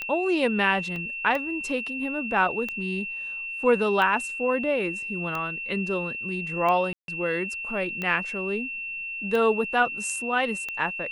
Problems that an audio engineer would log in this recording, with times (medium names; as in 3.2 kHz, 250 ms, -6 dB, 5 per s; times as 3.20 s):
tick 45 rpm -17 dBFS
whine 2.7 kHz -31 dBFS
0.96 s: dropout 2.6 ms
6.93–7.08 s: dropout 152 ms